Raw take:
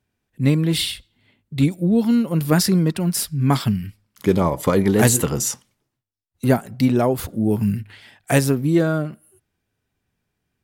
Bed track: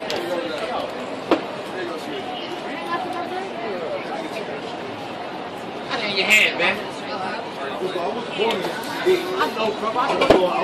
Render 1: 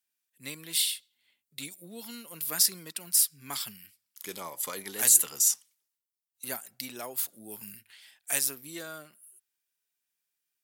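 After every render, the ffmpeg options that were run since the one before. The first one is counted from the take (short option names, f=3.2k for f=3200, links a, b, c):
-af "highpass=85,aderivative"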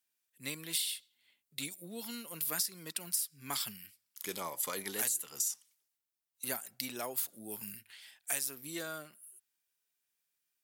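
-af "acompressor=threshold=-30dB:ratio=16"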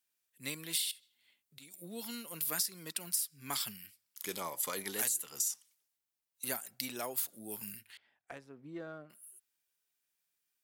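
-filter_complex "[0:a]asettb=1/sr,asplit=3[a][b][c];[a]atrim=end=0.914[d];[b]atrim=start=0.91:end=1.74,asetpts=PTS-STARTPTS,afade=t=in:d=0.004:c=qsin,afade=t=out:st=0.826:d=0.004:c=qsin,acompressor=threshold=-52dB:ratio=5:attack=3.2:release=140:knee=1:detection=peak[e];[c]atrim=start=1.736[f];[d][e]acrossfade=d=0.004:c1=hsin:c2=qsin[g];[g][f]acrossfade=d=0.004:c1=qsin:c2=hsin,asettb=1/sr,asplit=3[h][i][j];[h]atrim=end=7.974[k];[i]atrim=start=7.97:end=9.1,asetpts=PTS-STARTPTS,afade=t=in:d=0.004:c=qsin,afade=t=out:st=1.126:d=0.004:c=qsin,adynamicsmooth=sensitivity=1:basefreq=1k[l];[j]atrim=start=9.096[m];[k][l]acrossfade=d=0.004:c1=hsin:c2=qsin[n];[n][m]acrossfade=d=0.004:c1=qsin:c2=hsin"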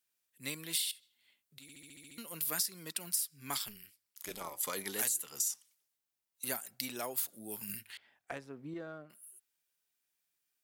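-filter_complex "[0:a]asettb=1/sr,asplit=3[a][b][c];[a]atrim=end=3.584[d];[b]atrim=start=3.58:end=4.61,asetpts=PTS-STARTPTS,afade=t=in:d=0.004:c=qsin,afade=t=out:st=1.026:d=0.004:c=qsin,tremolo=f=210:d=0.75[e];[c]atrim=start=4.606[f];[d][e]acrossfade=d=0.004:c1=hsin:c2=qsin[g];[g][f]acrossfade=d=0.004:c1=qsin:c2=hsin,asettb=1/sr,asplit=3[h][i][j];[h]atrim=end=7.694[k];[i]atrim=start=7.69:end=8.74,asetpts=PTS-STARTPTS,afade=t=in:d=0.004:c=qsin,afade=t=out:st=1.046:d=0.004:c=qsin,acontrast=32[l];[j]atrim=start=8.736[m];[k][l]acrossfade=d=0.004:c1=hsin:c2=qsin[n];[n][m]acrossfade=d=0.004:c1=qsin:c2=hsin,asplit=9[o][p][q][r][s][t][u][v][w];[o]atrim=end=1.692[x];[p]atrim=start=1.618:end=1.692[y];[q]atrim=start=1.618:end=1.692[z];[r]atrim=start=1.618:end=1.692[aa];[s]atrim=start=1.618:end=1.692[ab];[t]atrim=start=1.618:end=1.692[ac];[u]atrim=start=1.618:end=1.692[ad];[v]atrim=start=1.618:end=1.692[ae];[w]atrim=start=2.178[af];[x][y]acrossfade=d=0.004:c1=hsin:c2=hsin[ag];[ag][z]acrossfade=d=0.004:c1=hsin:c2=hsin[ah];[ah][aa]acrossfade=d=0.004:c1=hsin:c2=hsin[ai];[ai][ab]acrossfade=d=0.004:c1=hsin:c2=hsin[aj];[aj][ac]acrossfade=d=0.004:c1=hsin:c2=hsin[ak];[ak][ad]acrossfade=d=0.004:c1=hsin:c2=hsin[al];[al][ae]acrossfade=d=0.004:c1=hsin:c2=hsin[am];[am][af]acrossfade=d=0.004:c1=hsin:c2=hsin"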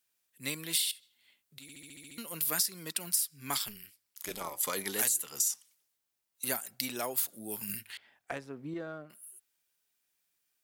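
-af "volume=4dB"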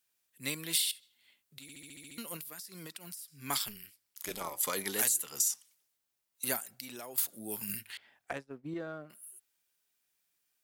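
-filter_complex "[0:a]asettb=1/sr,asplit=3[a][b][c];[a]atrim=end=2.364[d];[b]atrim=start=2.36:end=3.28,asetpts=PTS-STARTPTS,afade=t=in:d=0.004:c=qsin,afade=t=out:st=0.916:d=0.004:c=qsin,acompressor=threshold=-41dB:ratio=12:attack=3.2:release=140:knee=1:detection=peak[e];[c]atrim=start=3.276[f];[d][e]acrossfade=d=0.004:c1=hsin:c2=qsin[g];[g][f]acrossfade=d=0.004:c1=qsin:c2=hsin,asettb=1/sr,asplit=3[h][i][j];[h]atrim=end=6.634[k];[i]atrim=start=6.63:end=7.18,asetpts=PTS-STARTPTS,afade=t=in:d=0.004:c=qsin,afade=t=out:st=0.546:d=0.004:c=qsin,acompressor=threshold=-42dB:ratio=4:attack=3.2:release=140:knee=1:detection=peak[l];[j]atrim=start=7.176[m];[k][l]acrossfade=d=0.004:c1=hsin:c2=qsin[n];[n][m]acrossfade=d=0.004:c1=qsin:c2=hsin,asettb=1/sr,asplit=3[o][p][q];[o]atrim=end=8.334[r];[p]atrim=start=8.33:end=8.74,asetpts=PTS-STARTPTS,afade=t=in:d=0.004:c=qsin,afade=t=out:st=0.406:d=0.004:c=qsin,agate=range=-33dB:threshold=-40dB:ratio=3:release=100:detection=peak[s];[q]atrim=start=8.736[t];[r][s]acrossfade=d=0.004:c1=hsin:c2=qsin[u];[u][t]acrossfade=d=0.004:c1=qsin:c2=hsin"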